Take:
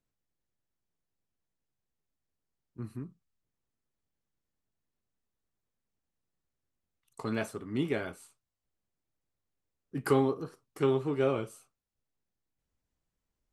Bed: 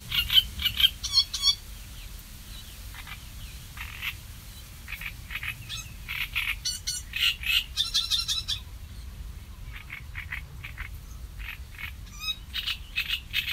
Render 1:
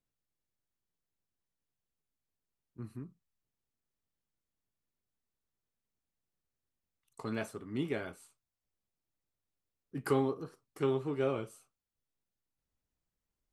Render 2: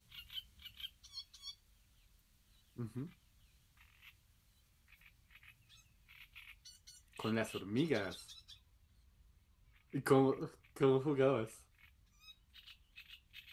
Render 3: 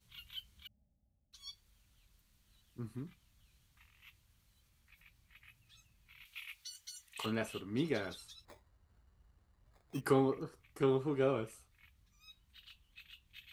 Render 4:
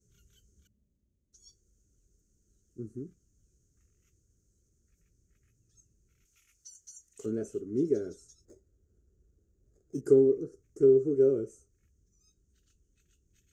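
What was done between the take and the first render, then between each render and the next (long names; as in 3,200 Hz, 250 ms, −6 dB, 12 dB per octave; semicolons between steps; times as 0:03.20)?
level −4 dB
mix in bed −27.5 dB
0:00.67–0:01.33: Chebyshev low-pass with heavy ripple 840 Hz, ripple 9 dB; 0:06.25–0:07.26: tilt shelving filter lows −9.5 dB, about 770 Hz; 0:08.45–0:10.01: sample-rate reduction 2,900 Hz
drawn EQ curve 140 Hz 0 dB, 250 Hz +3 dB, 400 Hz +12 dB, 990 Hz −29 dB, 1,400 Hz −11 dB, 2,300 Hz −25 dB, 3,900 Hz −24 dB, 6,500 Hz +8 dB, 11,000 Hz −14 dB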